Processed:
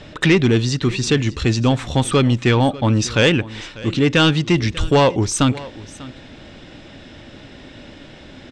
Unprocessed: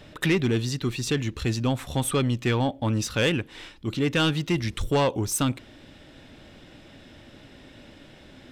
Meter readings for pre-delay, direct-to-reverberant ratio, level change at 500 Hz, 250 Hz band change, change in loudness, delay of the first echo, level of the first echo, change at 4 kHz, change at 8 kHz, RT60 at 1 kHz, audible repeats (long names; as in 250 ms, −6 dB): no reverb audible, no reverb audible, +8.5 dB, +8.5 dB, +8.5 dB, 594 ms, −19.0 dB, +8.5 dB, +5.5 dB, no reverb audible, 1